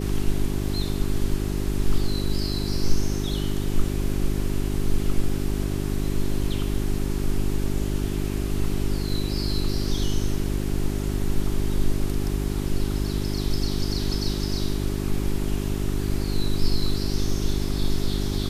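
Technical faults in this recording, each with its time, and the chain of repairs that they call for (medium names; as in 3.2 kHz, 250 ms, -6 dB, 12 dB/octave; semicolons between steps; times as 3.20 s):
hum 50 Hz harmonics 8 -27 dBFS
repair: de-hum 50 Hz, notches 8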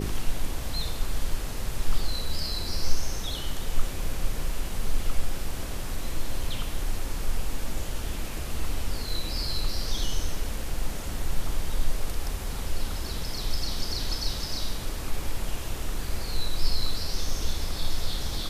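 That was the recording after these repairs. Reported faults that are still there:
nothing left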